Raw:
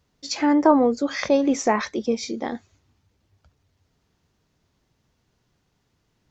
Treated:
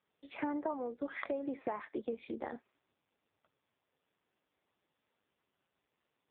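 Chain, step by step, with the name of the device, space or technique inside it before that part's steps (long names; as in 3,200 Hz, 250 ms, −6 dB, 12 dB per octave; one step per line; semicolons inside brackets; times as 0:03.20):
0:02.00–0:02.55: noise gate with hold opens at −28 dBFS
voicemail (band-pass filter 330–2,700 Hz; downward compressor 6 to 1, threshold −29 dBFS, peak gain reduction 16.5 dB; level −4.5 dB; AMR narrowband 5.15 kbit/s 8,000 Hz)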